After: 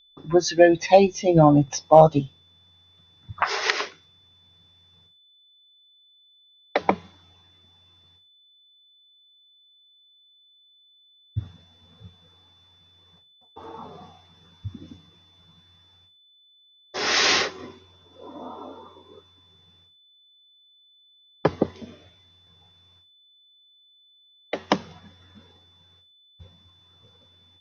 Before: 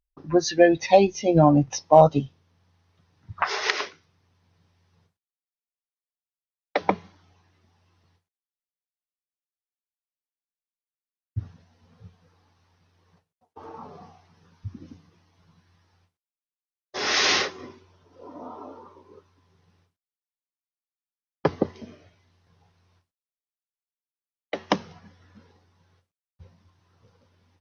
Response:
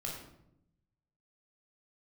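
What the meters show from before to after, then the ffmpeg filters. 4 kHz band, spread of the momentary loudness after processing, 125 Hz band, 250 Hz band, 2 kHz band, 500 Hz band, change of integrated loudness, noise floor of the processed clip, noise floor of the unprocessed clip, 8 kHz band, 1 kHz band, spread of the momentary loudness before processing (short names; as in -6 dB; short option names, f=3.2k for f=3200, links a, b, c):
+1.5 dB, 23 LU, +1.5 dB, +1.5 dB, +1.5 dB, +1.5 dB, +1.5 dB, -59 dBFS, under -85 dBFS, n/a, +1.5 dB, 21 LU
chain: -af "aeval=exprs='val(0)+0.00141*sin(2*PI*3500*n/s)':c=same,volume=1.5dB"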